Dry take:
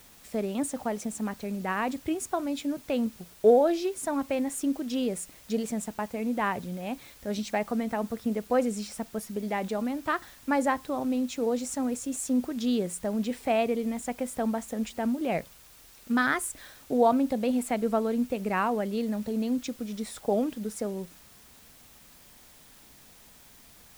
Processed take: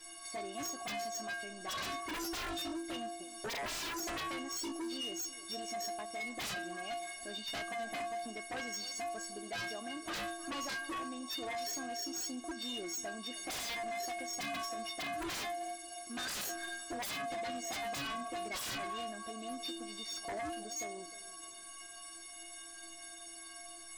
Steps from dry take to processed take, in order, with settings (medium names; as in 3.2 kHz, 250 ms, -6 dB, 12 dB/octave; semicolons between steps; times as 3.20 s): knee-point frequency compression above 3.4 kHz 1.5:1; in parallel at -2 dB: compression 6:1, threshold -39 dBFS, peak gain reduction 22.5 dB; on the sum: inharmonic resonator 330 Hz, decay 0.77 s, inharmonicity 0.03; tape echo 309 ms, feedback 45%, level -18 dB, low-pass 2 kHz; integer overflow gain 40.5 dB; bass shelf 230 Hz -10 dB; sine folder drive 15 dB, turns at -37 dBFS; trim +1 dB